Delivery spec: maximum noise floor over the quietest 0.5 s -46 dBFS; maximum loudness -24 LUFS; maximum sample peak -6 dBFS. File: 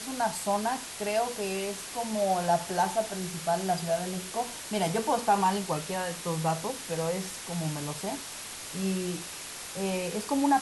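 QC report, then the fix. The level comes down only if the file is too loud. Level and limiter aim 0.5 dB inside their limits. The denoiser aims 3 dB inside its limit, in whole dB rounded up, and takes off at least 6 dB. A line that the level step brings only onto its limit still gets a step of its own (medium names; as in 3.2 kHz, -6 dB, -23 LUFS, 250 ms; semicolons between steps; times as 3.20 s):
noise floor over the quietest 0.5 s -41 dBFS: fail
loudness -30.5 LUFS: pass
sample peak -13.0 dBFS: pass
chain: noise reduction 8 dB, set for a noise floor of -41 dBFS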